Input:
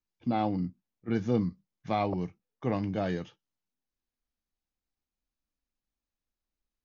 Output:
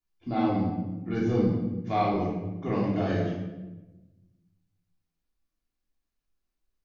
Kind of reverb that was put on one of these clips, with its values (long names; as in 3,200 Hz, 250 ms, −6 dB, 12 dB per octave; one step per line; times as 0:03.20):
rectangular room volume 550 cubic metres, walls mixed, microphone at 3.2 metres
level −4.5 dB